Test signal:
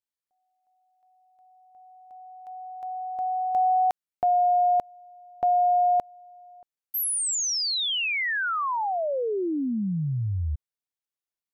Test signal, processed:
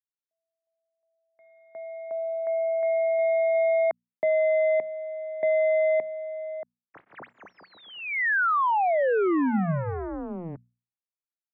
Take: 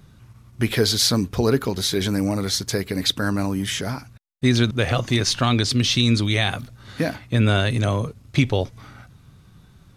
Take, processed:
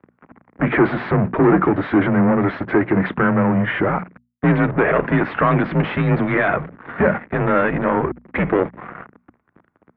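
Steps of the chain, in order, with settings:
leveller curve on the samples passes 5
single-sideband voice off tune −85 Hz 240–2,100 Hz
mains-hum notches 60/120/180/240 Hz
level −3 dB

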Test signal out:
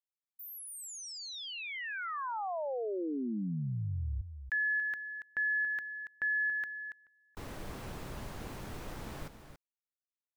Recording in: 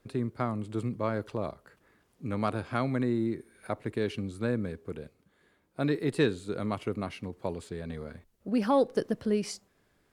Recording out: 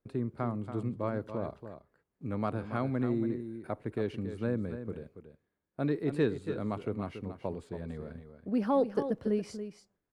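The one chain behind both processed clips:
noise gate −56 dBFS, range −14 dB
high-shelf EQ 2,100 Hz −11 dB
on a send: single-tap delay 281 ms −10 dB
on the sum: level −2 dB

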